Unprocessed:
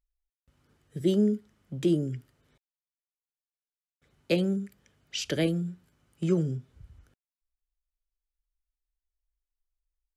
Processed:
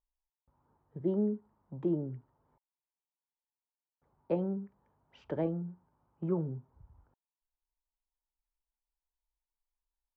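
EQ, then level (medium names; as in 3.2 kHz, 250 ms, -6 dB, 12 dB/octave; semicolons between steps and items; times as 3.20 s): resonant low-pass 930 Hz, resonance Q 6.3; -7.5 dB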